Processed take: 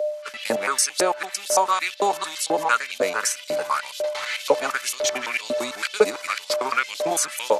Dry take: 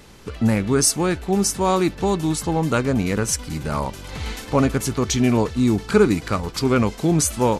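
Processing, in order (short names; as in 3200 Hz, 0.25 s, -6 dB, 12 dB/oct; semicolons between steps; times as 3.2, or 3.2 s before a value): local time reversal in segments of 0.112 s; gate -32 dBFS, range -15 dB; whine 600 Hz -30 dBFS; LFO high-pass saw up 2 Hz 470–4000 Hz; three-band squash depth 40%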